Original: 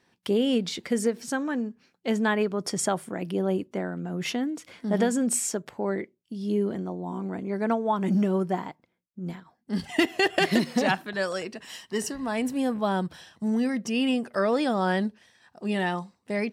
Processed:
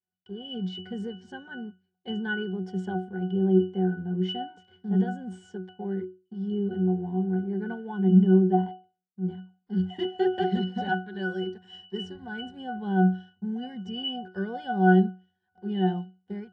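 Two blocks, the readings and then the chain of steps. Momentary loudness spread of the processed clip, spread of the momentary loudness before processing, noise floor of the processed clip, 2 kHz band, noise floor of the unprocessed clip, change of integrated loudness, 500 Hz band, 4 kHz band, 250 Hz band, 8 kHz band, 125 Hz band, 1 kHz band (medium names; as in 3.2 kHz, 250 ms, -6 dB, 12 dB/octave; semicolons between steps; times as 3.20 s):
18 LU, 11 LU, -78 dBFS, -4.5 dB, -73 dBFS, 0.0 dB, -2.5 dB, -3.0 dB, +0.5 dB, under -30 dB, +6.0 dB, -1.0 dB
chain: pre-emphasis filter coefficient 0.8; level rider gain up to 15.5 dB; waveshaping leveller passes 2; distance through air 89 m; pitch-class resonator F#, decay 0.32 s; trim +3 dB; AAC 96 kbps 22.05 kHz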